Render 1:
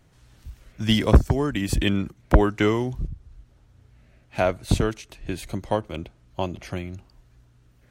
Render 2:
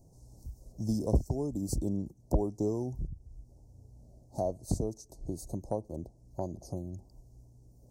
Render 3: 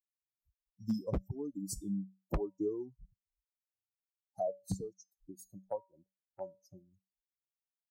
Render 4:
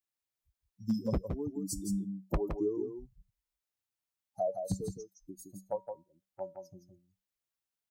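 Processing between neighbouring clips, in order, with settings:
inverse Chebyshev band-stop filter 1,400–3,200 Hz, stop band 50 dB; dynamic equaliser 4,500 Hz, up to +4 dB, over −48 dBFS, Q 0.89; downward compressor 1.5 to 1, threshold −45 dBFS, peak gain reduction 13 dB
spectral dynamics exaggerated over time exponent 3; tuned comb filter 190 Hz, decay 0.28 s, harmonics odd, mix 60%; wave folding −33.5 dBFS; level +8.5 dB
single-tap delay 166 ms −6.5 dB; level +2.5 dB

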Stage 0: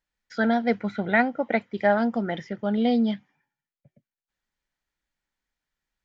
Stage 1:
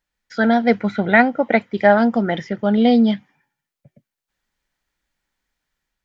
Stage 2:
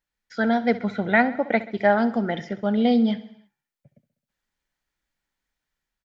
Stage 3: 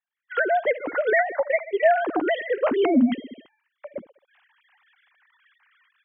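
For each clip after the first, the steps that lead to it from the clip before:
automatic gain control gain up to 3.5 dB; level +4.5 dB
repeating echo 66 ms, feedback 58%, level −16.5 dB; level −5.5 dB
three sine waves on the formant tracks; camcorder AGC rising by 35 dB per second; level −2 dB

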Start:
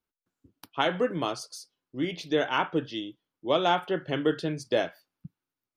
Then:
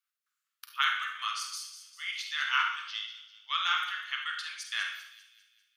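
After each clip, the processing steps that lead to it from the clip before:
Chebyshev high-pass filter 1,200 Hz, order 5
delay with a high-pass on its return 198 ms, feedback 49%, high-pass 3,700 Hz, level −10.5 dB
on a send at −3 dB: convolution reverb RT60 0.70 s, pre-delay 36 ms
on the sum: level +2.5 dB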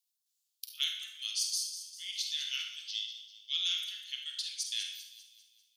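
inverse Chebyshev high-pass filter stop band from 640 Hz, stop band 80 dB
level +6.5 dB

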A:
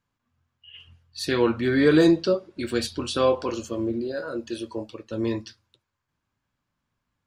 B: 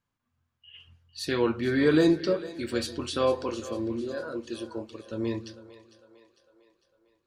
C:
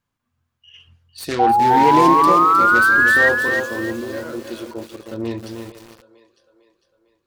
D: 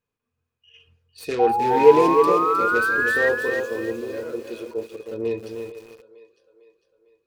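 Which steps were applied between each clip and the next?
echo with a time of its own for lows and highs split 400 Hz, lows 150 ms, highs 452 ms, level −15 dB; level −4 dB
phase distortion by the signal itself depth 0.3 ms; sound drawn into the spectrogram rise, 0:01.39–0:03.29, 760–1,900 Hz −19 dBFS; feedback echo at a low word length 311 ms, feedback 35%, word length 7 bits, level −5.5 dB; level +4.5 dB
hollow resonant body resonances 450/2,500 Hz, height 18 dB, ringing for 65 ms; level −8 dB

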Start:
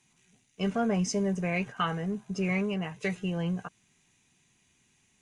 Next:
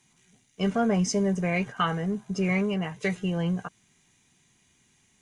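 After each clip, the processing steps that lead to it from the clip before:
notch filter 2,600 Hz, Q 11
level +3.5 dB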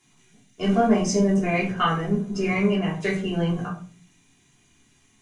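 convolution reverb RT60 0.40 s, pre-delay 3 ms, DRR −4.5 dB
level −2 dB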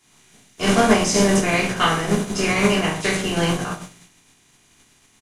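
compressing power law on the bin magnitudes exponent 0.57
downsampling to 32,000 Hz
level +3.5 dB

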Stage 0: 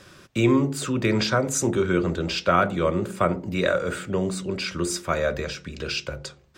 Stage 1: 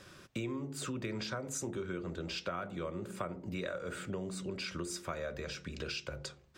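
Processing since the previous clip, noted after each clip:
downward compressor 6 to 1, threshold −30 dBFS, peak gain reduction 14.5 dB
level −6 dB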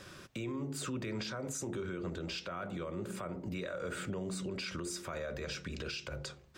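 brickwall limiter −34 dBFS, peak gain reduction 10.5 dB
level +3.5 dB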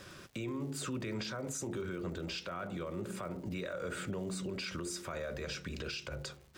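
surface crackle 220 per second −51 dBFS

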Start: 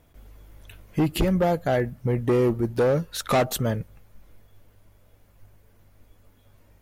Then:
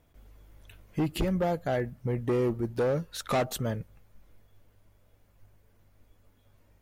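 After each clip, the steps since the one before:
parametric band 12,000 Hz −4 dB 0.35 octaves
level −6 dB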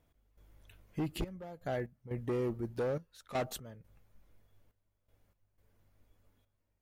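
gate pattern "x..xxxxxxx...x" 121 BPM −12 dB
level −7 dB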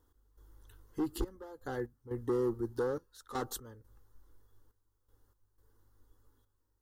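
phaser with its sweep stopped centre 640 Hz, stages 6
level +4 dB

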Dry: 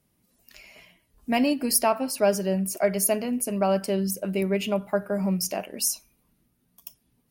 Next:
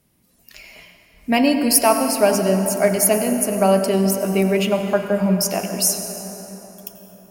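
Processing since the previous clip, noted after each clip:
hum removal 49.92 Hz, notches 31
convolution reverb RT60 4.4 s, pre-delay 78 ms, DRR 6.5 dB
level +7 dB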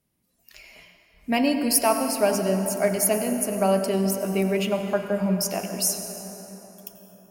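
noise reduction from a noise print of the clip's start 6 dB
level −5.5 dB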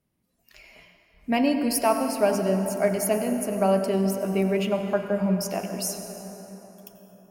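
high-shelf EQ 3,300 Hz −7.5 dB

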